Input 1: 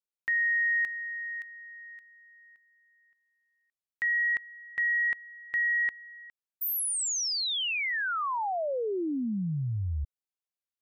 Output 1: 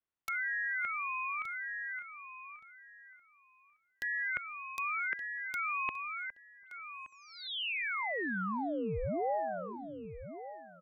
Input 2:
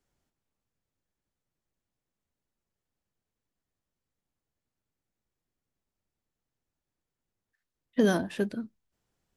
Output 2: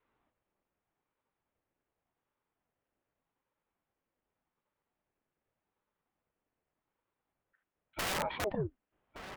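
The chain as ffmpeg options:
ffmpeg -i in.wav -filter_complex "[0:a]equalizer=frequency=660:width=0.35:gain=7.5,asplit=2[link_01][link_02];[link_02]asoftclip=type=tanh:threshold=-20dB,volume=-10dB[link_03];[link_01][link_03]amix=inputs=2:normalize=0,highpass=frequency=190:width_type=q:width=0.5412,highpass=frequency=190:width_type=q:width=1.307,lowpass=frequency=3100:width_type=q:width=0.5176,lowpass=frequency=3100:width_type=q:width=0.7071,lowpass=frequency=3100:width_type=q:width=1.932,afreqshift=-98,aeval=exprs='(mod(7.08*val(0)+1,2)-1)/7.08':channel_layout=same,asplit=2[link_04][link_05];[link_05]adelay=1172,lowpass=frequency=2100:poles=1,volume=-20dB,asplit=2[link_06][link_07];[link_07]adelay=1172,lowpass=frequency=2100:poles=1,volume=0.22[link_08];[link_04][link_06][link_08]amix=inputs=3:normalize=0,areverse,acompressor=threshold=-35dB:ratio=6:attack=46:release=24:knee=6:detection=rms,areverse,adynamicequalizer=threshold=0.00251:dfrequency=120:dqfactor=1.6:tfrequency=120:tqfactor=1.6:attack=5:release=100:ratio=0.375:range=2:mode=boostabove:tftype=bell,aeval=exprs='val(0)*sin(2*PI*420*n/s+420*0.75/0.85*sin(2*PI*0.85*n/s))':channel_layout=same" out.wav

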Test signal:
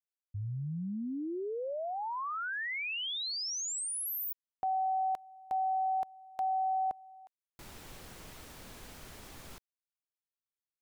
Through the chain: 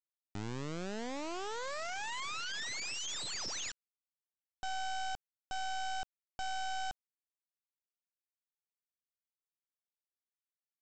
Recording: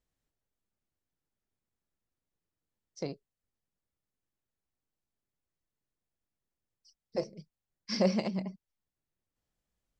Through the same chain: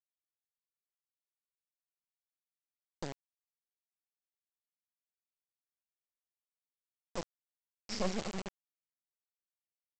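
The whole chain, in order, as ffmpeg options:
ffmpeg -i in.wav -af "aresample=16000,acrusher=bits=3:dc=4:mix=0:aa=0.000001,aresample=44100,asoftclip=type=tanh:threshold=-16.5dB,volume=-3dB" out.wav

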